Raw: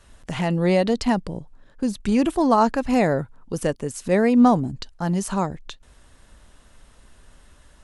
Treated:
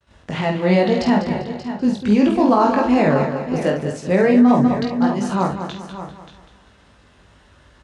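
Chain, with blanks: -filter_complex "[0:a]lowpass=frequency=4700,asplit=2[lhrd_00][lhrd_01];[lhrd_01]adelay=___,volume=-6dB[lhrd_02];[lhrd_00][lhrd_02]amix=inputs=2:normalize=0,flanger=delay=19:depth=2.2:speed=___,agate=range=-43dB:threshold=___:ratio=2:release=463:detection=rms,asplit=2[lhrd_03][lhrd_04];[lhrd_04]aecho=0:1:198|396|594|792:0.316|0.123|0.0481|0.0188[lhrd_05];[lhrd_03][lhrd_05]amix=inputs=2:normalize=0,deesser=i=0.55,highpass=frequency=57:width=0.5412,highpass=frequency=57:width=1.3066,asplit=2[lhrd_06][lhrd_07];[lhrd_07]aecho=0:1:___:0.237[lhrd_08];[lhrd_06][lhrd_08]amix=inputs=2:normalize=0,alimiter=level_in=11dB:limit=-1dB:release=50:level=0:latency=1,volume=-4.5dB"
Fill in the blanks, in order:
49, 2.3, -48dB, 582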